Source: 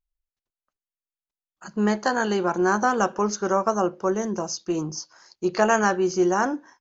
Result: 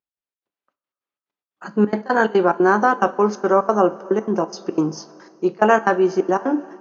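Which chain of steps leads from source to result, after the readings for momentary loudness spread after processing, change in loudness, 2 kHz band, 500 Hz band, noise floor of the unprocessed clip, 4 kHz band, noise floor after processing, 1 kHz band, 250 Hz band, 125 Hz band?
8 LU, +4.5 dB, +3.5 dB, +5.5 dB, under -85 dBFS, -2.5 dB, under -85 dBFS, +4.5 dB, +4.0 dB, +3.0 dB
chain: bass shelf 380 Hz +7.5 dB; trance gate "x.xx.xxxx.x.x" 179 bpm -24 dB; low-pass 3.1 kHz 12 dB/octave; two-slope reverb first 0.25 s, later 3.9 s, from -19 dB, DRR 11.5 dB; level rider gain up to 8 dB; high-pass 280 Hz 12 dB/octave; trim +1 dB

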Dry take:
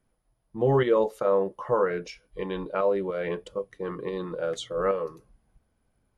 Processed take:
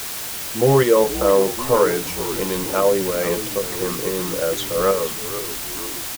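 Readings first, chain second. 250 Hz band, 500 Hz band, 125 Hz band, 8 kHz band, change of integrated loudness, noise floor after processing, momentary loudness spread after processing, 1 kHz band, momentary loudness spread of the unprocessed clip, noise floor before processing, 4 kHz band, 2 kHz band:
+8.5 dB, +7.5 dB, +7.5 dB, no reading, +7.5 dB, -29 dBFS, 9 LU, +7.5 dB, 12 LU, -74 dBFS, +16.0 dB, +9.5 dB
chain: frequency-shifting echo 476 ms, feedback 59%, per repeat -74 Hz, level -12.5 dB; word length cut 6-bit, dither triangular; trim +7 dB

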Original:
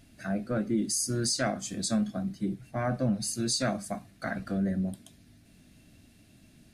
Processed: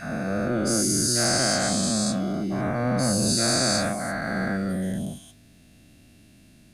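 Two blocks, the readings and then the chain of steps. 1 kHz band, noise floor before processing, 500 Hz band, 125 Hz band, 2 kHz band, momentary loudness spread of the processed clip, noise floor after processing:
+8.0 dB, -59 dBFS, +7.0 dB, +5.5 dB, +9.5 dB, 8 LU, -54 dBFS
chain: every event in the spectrogram widened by 480 ms; trim -2 dB

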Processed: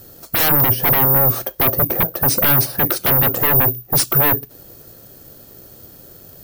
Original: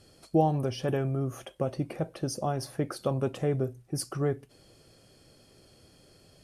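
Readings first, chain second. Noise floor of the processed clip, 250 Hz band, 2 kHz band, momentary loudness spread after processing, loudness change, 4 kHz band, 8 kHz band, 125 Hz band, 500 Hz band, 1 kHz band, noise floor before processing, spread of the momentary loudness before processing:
-44 dBFS, +6.0 dB, +22.5 dB, 5 LU, +17.0 dB, +17.0 dB, +17.0 dB, +8.5 dB, +6.5 dB, +12.0 dB, -60 dBFS, 8 LU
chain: high-order bell 3.6 kHz -9.5 dB; careless resampling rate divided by 3×, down none, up zero stuff; sine folder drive 11 dB, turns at -12.5 dBFS; upward expansion 1.5:1, over -34 dBFS; trim +6 dB

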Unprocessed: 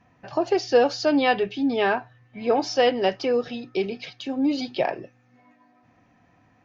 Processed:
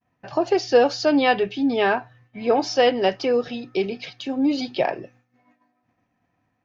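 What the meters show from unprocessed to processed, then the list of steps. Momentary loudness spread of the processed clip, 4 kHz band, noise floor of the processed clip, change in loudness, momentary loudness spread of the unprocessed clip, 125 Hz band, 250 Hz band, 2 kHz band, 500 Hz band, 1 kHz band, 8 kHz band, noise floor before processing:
10 LU, +2.0 dB, -73 dBFS, +2.0 dB, 10 LU, +2.0 dB, +2.0 dB, +2.0 dB, +2.0 dB, +2.0 dB, no reading, -61 dBFS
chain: expander -50 dBFS; trim +2 dB

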